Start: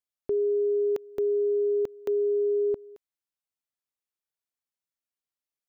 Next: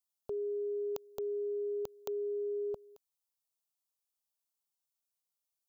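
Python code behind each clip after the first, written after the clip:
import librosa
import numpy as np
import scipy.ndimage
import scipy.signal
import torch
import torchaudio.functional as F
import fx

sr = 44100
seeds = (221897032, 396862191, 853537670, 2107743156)

y = fx.tilt_eq(x, sr, slope=1.5)
y = fx.fixed_phaser(y, sr, hz=780.0, stages=4)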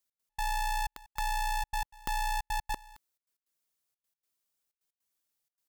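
y = fx.step_gate(x, sr, bpm=156, pattern='x.x.xxxx', floor_db=-60.0, edge_ms=4.5)
y = y * np.sign(np.sin(2.0 * np.pi * 440.0 * np.arange(len(y)) / sr))
y = y * librosa.db_to_amplitude(5.0)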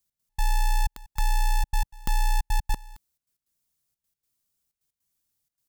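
y = fx.bass_treble(x, sr, bass_db=14, treble_db=5)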